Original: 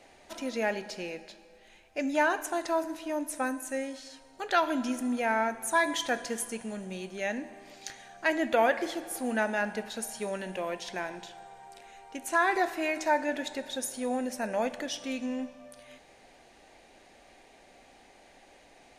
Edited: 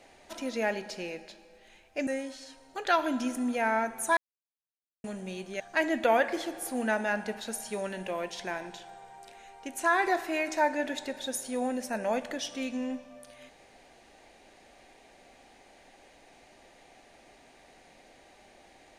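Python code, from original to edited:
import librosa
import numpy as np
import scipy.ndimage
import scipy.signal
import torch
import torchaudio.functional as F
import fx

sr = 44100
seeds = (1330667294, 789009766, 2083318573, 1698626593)

y = fx.edit(x, sr, fx.cut(start_s=2.07, length_s=1.64),
    fx.silence(start_s=5.81, length_s=0.87),
    fx.cut(start_s=7.24, length_s=0.85), tone=tone)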